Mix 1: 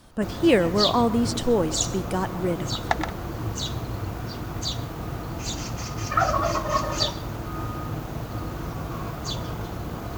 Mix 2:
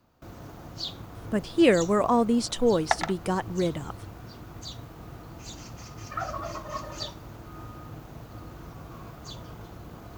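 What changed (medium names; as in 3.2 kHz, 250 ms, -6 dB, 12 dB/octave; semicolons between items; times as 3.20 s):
speech: entry +1.15 s; first sound -10.5 dB; reverb: off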